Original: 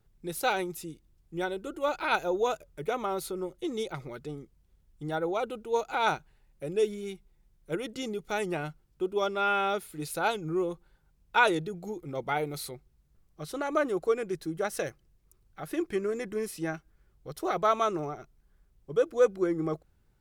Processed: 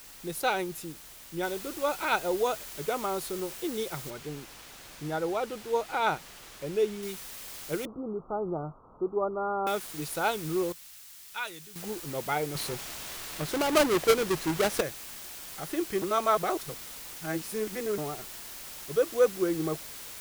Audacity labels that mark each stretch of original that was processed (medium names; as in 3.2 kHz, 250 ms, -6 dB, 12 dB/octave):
1.430000	1.430000	noise floor step -49 dB -43 dB
4.100000	7.030000	low-pass 3.9 kHz 6 dB/octave
7.850000	9.670000	steep low-pass 1.3 kHz 96 dB/octave
10.720000	11.760000	amplifier tone stack bass-middle-treble 5-5-5
12.550000	14.810000	square wave that keeps the level
16.020000	17.980000	reverse